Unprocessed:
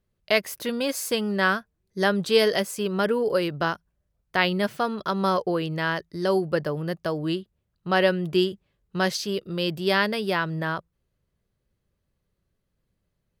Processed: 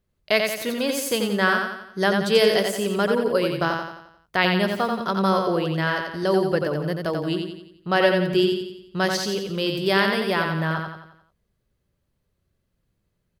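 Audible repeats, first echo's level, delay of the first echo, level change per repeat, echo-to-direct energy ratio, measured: 5, -4.5 dB, 88 ms, -6.5 dB, -3.5 dB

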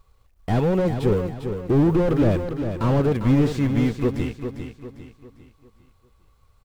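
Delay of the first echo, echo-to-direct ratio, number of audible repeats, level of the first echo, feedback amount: 0.4 s, -7.0 dB, 4, -8.0 dB, 40%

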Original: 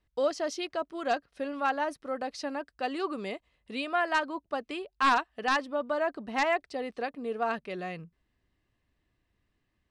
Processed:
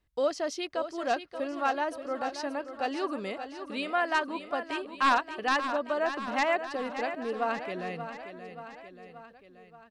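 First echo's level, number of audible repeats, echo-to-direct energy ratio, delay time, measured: -10.0 dB, 4, -8.0 dB, 0.58 s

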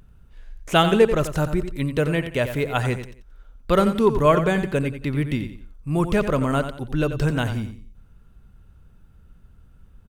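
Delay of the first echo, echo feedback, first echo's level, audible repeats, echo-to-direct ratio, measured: 89 ms, 31%, -10.0 dB, 3, -9.5 dB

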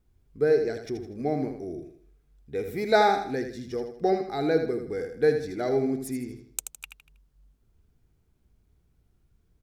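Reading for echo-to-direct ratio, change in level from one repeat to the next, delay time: -7.0 dB, -8.5 dB, 80 ms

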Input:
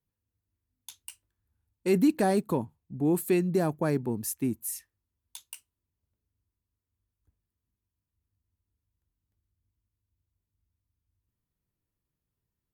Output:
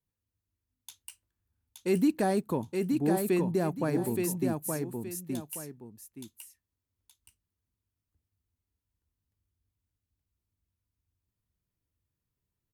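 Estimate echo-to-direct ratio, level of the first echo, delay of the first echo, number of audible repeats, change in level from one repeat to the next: -3.5 dB, -4.0 dB, 0.872 s, 2, -10.5 dB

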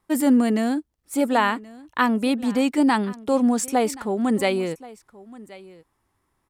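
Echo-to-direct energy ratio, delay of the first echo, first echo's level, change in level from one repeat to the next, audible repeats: -20.5 dB, 1.077 s, -20.5 dB, no steady repeat, 1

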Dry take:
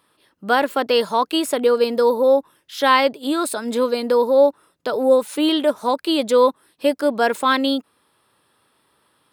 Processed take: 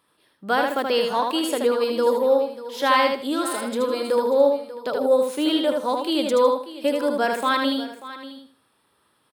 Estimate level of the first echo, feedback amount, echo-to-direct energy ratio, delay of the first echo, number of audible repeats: -4.0 dB, no steady repeat, -3.5 dB, 78 ms, 6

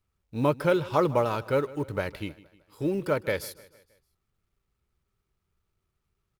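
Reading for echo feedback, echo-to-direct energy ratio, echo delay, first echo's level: 49%, -19.0 dB, 0.155 s, -20.0 dB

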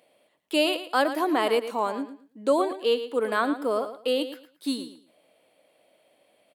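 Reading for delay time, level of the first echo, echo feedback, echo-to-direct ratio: 0.112 s, -11.5 dB, 22%, -11.5 dB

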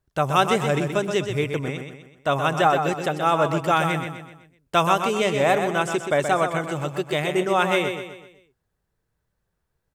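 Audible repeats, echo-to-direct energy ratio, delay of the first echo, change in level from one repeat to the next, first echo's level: 4, -6.0 dB, 0.126 s, -7.0 dB, -7.0 dB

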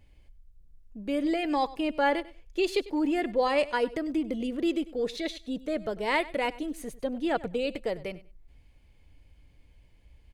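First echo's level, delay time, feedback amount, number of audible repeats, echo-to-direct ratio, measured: -18.5 dB, 98 ms, 18%, 2, -18.5 dB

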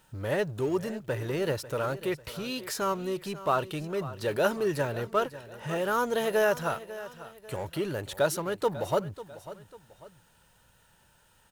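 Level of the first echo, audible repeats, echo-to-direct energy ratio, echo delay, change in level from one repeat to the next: -15.5 dB, 2, -15.0 dB, 0.545 s, -8.0 dB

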